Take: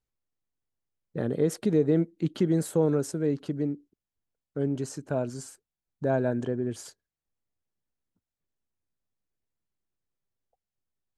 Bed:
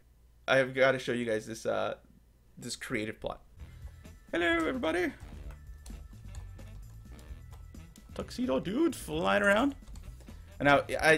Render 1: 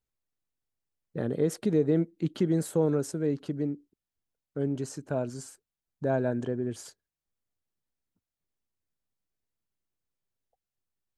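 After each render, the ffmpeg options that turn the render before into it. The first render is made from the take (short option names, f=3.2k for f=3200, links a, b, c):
-af "volume=-1.5dB"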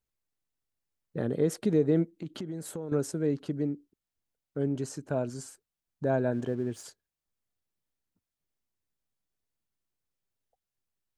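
-filter_complex "[0:a]asettb=1/sr,asplit=3[a][b][c];[a]atrim=end=2.114[d];[b]atrim=start=2.11:end=2.92,asetpts=PTS-STARTPTS,afade=t=in:d=0.004:c=qsin,afade=t=out:st=0.806:d=0.004:c=qsin,acompressor=threshold=-35dB:ratio=4:attack=3.2:release=140:knee=1:detection=peak[e];[c]atrim=start=2.916[f];[d][e]acrossfade=d=0.004:c1=hsin:c2=qsin[g];[g][f]acrossfade=d=0.004:c1=qsin:c2=hsin,asettb=1/sr,asplit=3[h][i][j];[h]atrim=end=6.334[k];[i]atrim=start=6.33:end=6.84,asetpts=PTS-STARTPTS,afade=t=in:d=0.004:c=qsin,afade=t=out:st=0.506:d=0.004:c=qsin,aeval=exprs='sgn(val(0))*max(abs(val(0))-0.00168,0)':c=same[l];[j]atrim=start=6.836[m];[k][l]acrossfade=d=0.004:c1=hsin:c2=qsin[n];[n][m]acrossfade=d=0.004:c1=qsin:c2=hsin"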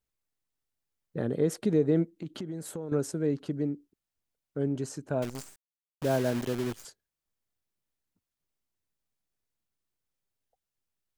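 -filter_complex "[0:a]asettb=1/sr,asplit=3[a][b][c];[a]atrim=end=5.224[d];[b]atrim=start=5.22:end=6.85,asetpts=PTS-STARTPTS,afade=t=in:d=0.004:c=qsin,afade=t=out:st=1.626:d=0.004:c=qsin,acrusher=bits=7:dc=4:mix=0:aa=0.000001[e];[c]atrim=start=6.846[f];[d][e]acrossfade=d=0.004:c1=hsin:c2=qsin[g];[g][f]acrossfade=d=0.004:c1=qsin:c2=hsin"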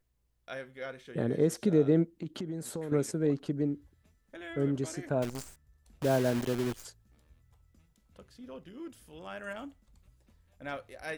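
-filter_complex "[1:a]volume=-15.5dB[a];[0:a][a]amix=inputs=2:normalize=0"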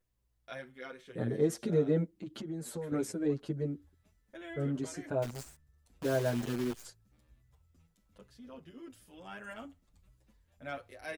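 -filter_complex "[0:a]asplit=2[a][b];[b]adelay=7.8,afreqshift=1[c];[a][c]amix=inputs=2:normalize=1"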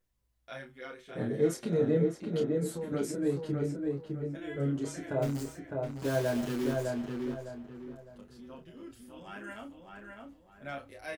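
-filter_complex "[0:a]asplit=2[a][b];[b]adelay=29,volume=-5.5dB[c];[a][c]amix=inputs=2:normalize=0,asplit=2[d][e];[e]adelay=607,lowpass=f=2.3k:p=1,volume=-3dB,asplit=2[f][g];[g]adelay=607,lowpass=f=2.3k:p=1,volume=0.34,asplit=2[h][i];[i]adelay=607,lowpass=f=2.3k:p=1,volume=0.34,asplit=2[j][k];[k]adelay=607,lowpass=f=2.3k:p=1,volume=0.34[l];[d][f][h][j][l]amix=inputs=5:normalize=0"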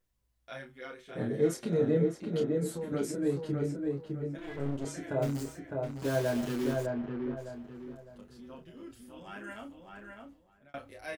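-filter_complex "[0:a]asettb=1/sr,asplit=3[a][b][c];[a]atrim=end=4.384[d];[b]atrim=start=4.38:end=4.85,asetpts=PTS-STARTPTS,afade=t=in:d=0.004:c=qsin,afade=t=out:st=0.466:d=0.004:c=qsin,aeval=exprs='clip(val(0),-1,0.00596)':c=same[e];[c]atrim=start=4.846[f];[d][e]acrossfade=d=0.004:c1=hsin:c2=qsin[g];[g][f]acrossfade=d=0.004:c1=qsin:c2=hsin,asplit=3[h][i][j];[h]afade=t=out:st=6.85:d=0.02[k];[i]lowpass=2.1k,afade=t=in:st=6.85:d=0.02,afade=t=out:st=7.36:d=0.02[l];[j]afade=t=in:st=7.36:d=0.02[m];[k][l][m]amix=inputs=3:normalize=0,asplit=2[n][o];[n]atrim=end=10.74,asetpts=PTS-STARTPTS,afade=t=out:st=9.99:d=0.75:c=qsin[p];[o]atrim=start=10.74,asetpts=PTS-STARTPTS,afade=t=in:d=0.004:c=hsin[q];[p][q]concat=n=2:v=0:a=1"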